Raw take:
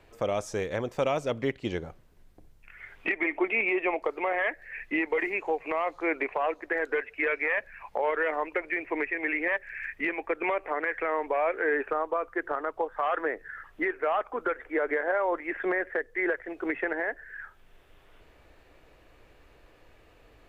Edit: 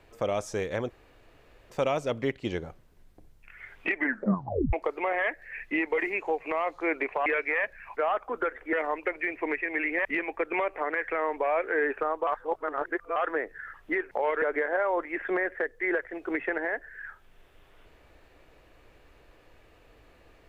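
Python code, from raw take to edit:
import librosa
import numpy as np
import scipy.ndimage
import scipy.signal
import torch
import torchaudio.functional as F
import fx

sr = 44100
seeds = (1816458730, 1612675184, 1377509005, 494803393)

y = fx.edit(x, sr, fx.insert_room_tone(at_s=0.9, length_s=0.8),
    fx.tape_stop(start_s=3.16, length_s=0.77),
    fx.cut(start_s=6.46, length_s=0.74),
    fx.swap(start_s=7.91, length_s=0.31, other_s=14.01, other_length_s=0.76),
    fx.cut(start_s=9.54, length_s=0.41),
    fx.reverse_span(start_s=12.17, length_s=0.89), tone=tone)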